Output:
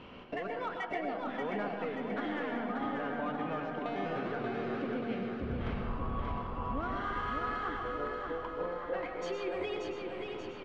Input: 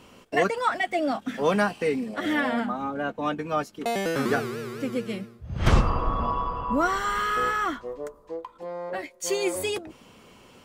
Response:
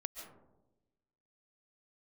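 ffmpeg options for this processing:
-filter_complex "[0:a]lowpass=frequency=3400:width=0.5412,lowpass=frequency=3400:width=1.3066,acompressor=threshold=-37dB:ratio=6,asplit=2[link_01][link_02];[link_02]asoftclip=type=tanh:threshold=-38.5dB,volume=-6dB[link_03];[link_01][link_03]amix=inputs=2:normalize=0,aecho=1:1:583|1166|1749|2332|2915|3498|4081:0.596|0.328|0.18|0.0991|0.0545|0.03|0.0165[link_04];[1:a]atrim=start_sample=2205,asetrate=52920,aresample=44100[link_05];[link_04][link_05]afir=irnorm=-1:irlink=0,volume=3dB"

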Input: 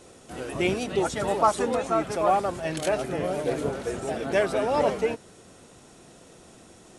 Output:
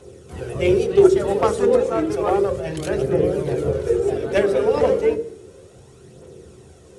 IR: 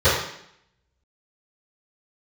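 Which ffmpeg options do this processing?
-filter_complex "[0:a]aphaser=in_gain=1:out_gain=1:delay=4.4:decay=0.41:speed=0.32:type=triangular,aeval=exprs='0.355*(cos(1*acos(clip(val(0)/0.355,-1,1)))-cos(1*PI/2))+0.0794*(cos(3*acos(clip(val(0)/0.355,-1,1)))-cos(3*PI/2))+0.00891*(cos(5*acos(clip(val(0)/0.355,-1,1)))-cos(5*PI/2))':channel_layout=same,asplit=2[link_01][link_02];[link_02]lowshelf=frequency=580:width_type=q:width=3:gain=12.5[link_03];[1:a]atrim=start_sample=2205[link_04];[link_03][link_04]afir=irnorm=-1:irlink=0,volume=-32.5dB[link_05];[link_01][link_05]amix=inputs=2:normalize=0,volume=4.5dB"

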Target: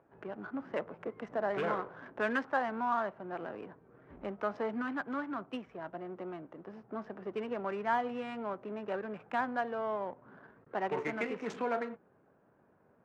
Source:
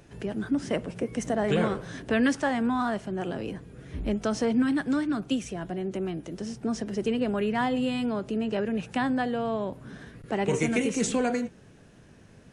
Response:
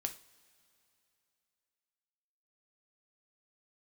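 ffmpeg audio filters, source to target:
-af "adynamicsmooth=sensitivity=6.5:basefreq=960,bandpass=frequency=1100:width_type=q:width=1.2:csg=0,asetrate=42336,aresample=44100"

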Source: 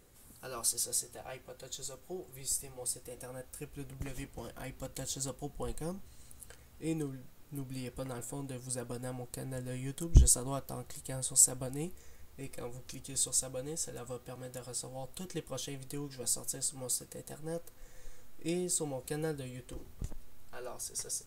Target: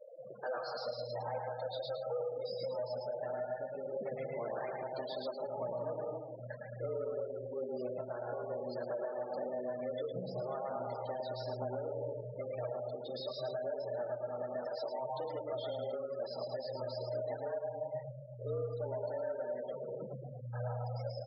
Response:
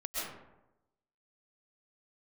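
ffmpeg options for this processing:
-filter_complex "[0:a]aresample=11025,asoftclip=type=hard:threshold=-23.5dB,aresample=44100,equalizer=frequency=160:width_type=o:width=0.33:gain=-6,equalizer=frequency=400:width_type=o:width=0.33:gain=10,equalizer=frequency=2500:width_type=o:width=0.33:gain=-8,asplit=2[link_01][link_02];[1:a]atrim=start_sample=2205,lowpass=4100[link_03];[link_02][link_03]afir=irnorm=-1:irlink=0,volume=-8dB[link_04];[link_01][link_04]amix=inputs=2:normalize=0,acompressor=threshold=-43dB:ratio=3,asplit=2[link_05][link_06];[link_06]highpass=frequency=720:poles=1,volume=21dB,asoftclip=type=tanh:threshold=-33dB[link_07];[link_05][link_07]amix=inputs=2:normalize=0,lowpass=frequency=3400:poles=1,volume=-6dB,flanger=delay=8.2:depth=9.5:regen=-29:speed=0.46:shape=triangular,aecho=1:1:109|218|327|436|545:0.631|0.246|0.096|0.0374|0.0146,afftfilt=real='re*gte(hypot(re,im),0.00794)':imag='im*gte(hypot(re,im),0.00794)':win_size=1024:overlap=0.75,equalizer=frequency=480:width=1.2:gain=5,alimiter=level_in=8.5dB:limit=-24dB:level=0:latency=1:release=332,volume=-8.5dB,afreqshift=120,volume=2.5dB"

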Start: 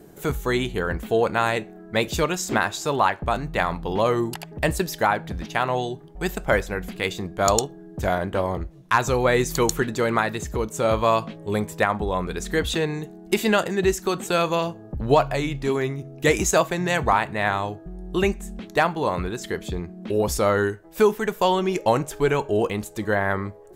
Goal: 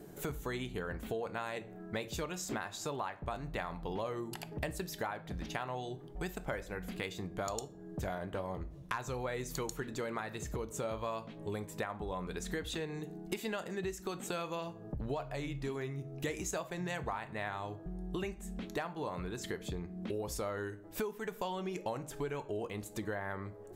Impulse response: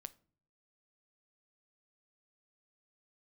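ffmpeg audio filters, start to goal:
-filter_complex "[1:a]atrim=start_sample=2205[link_01];[0:a][link_01]afir=irnorm=-1:irlink=0,acompressor=threshold=-38dB:ratio=5,volume=1.5dB"

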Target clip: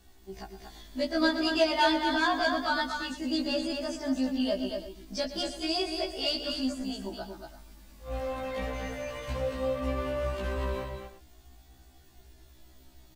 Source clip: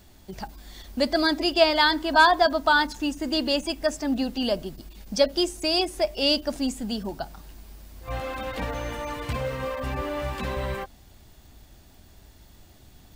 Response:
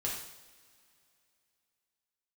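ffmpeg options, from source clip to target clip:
-filter_complex "[0:a]acrossover=split=8400[link_01][link_02];[link_02]acompressor=threshold=-52dB:ratio=4:attack=1:release=60[link_03];[link_01][link_03]amix=inputs=2:normalize=0,flanger=delay=2.6:depth=1.3:regen=29:speed=0.17:shape=triangular,asoftclip=type=tanh:threshold=-15dB,asplit=2[link_04][link_05];[link_05]aecho=0:1:119|233|334:0.224|0.531|0.168[link_06];[link_04][link_06]amix=inputs=2:normalize=0,afftfilt=real='re*1.73*eq(mod(b,3),0)':imag='im*1.73*eq(mod(b,3),0)':win_size=2048:overlap=0.75"

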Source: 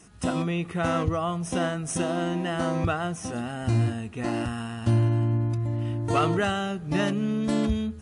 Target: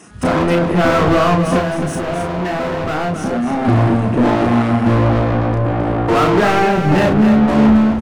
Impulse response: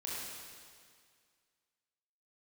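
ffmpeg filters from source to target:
-filter_complex "[0:a]afwtdn=0.0178,equalizer=frequency=220:width=0.59:gain=6.5,crystalizer=i=1:c=0,asplit=2[link_01][link_02];[link_02]highpass=frequency=720:poles=1,volume=33dB,asoftclip=type=tanh:threshold=-13dB[link_03];[link_01][link_03]amix=inputs=2:normalize=0,lowpass=frequency=1800:poles=1,volume=-6dB,asettb=1/sr,asplit=3[link_04][link_05][link_06];[link_04]atrim=end=1.584[link_07];[link_05]atrim=start=1.58:end=3.65,asetpts=PTS-STARTPTS,afade=type=in:duration=0.004:curve=qsin,afade=type=out:start_time=2.066:duration=0.004:curve=qsin,acompressor=threshold=-24dB:ratio=6[link_08];[link_06]atrim=start=3.646[link_09];[link_07][link_08]acrossfade=duration=0.004:curve1=hsin:curve2=qsin[link_10];[link_10][link_09]acrossfade=duration=0.004:curve1=qsin:curve2=hsin,asplit=2[link_11][link_12];[link_12]adelay=33,volume=-4.5dB[link_13];[link_11][link_13]amix=inputs=2:normalize=0,aecho=1:1:265:0.422,volume=4.5dB"

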